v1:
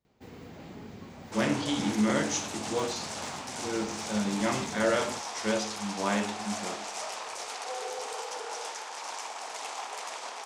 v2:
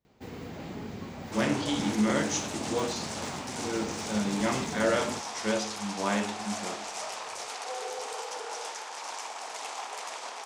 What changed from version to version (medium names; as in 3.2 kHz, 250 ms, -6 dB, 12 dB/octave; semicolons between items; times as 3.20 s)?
first sound +5.5 dB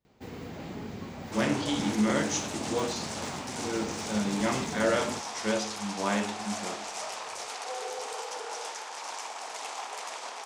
no change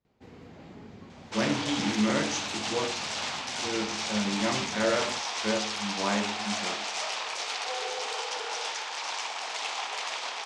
first sound -7.5 dB; second sound: add peaking EQ 3.4 kHz +11 dB 2.2 oct; master: add distance through air 56 m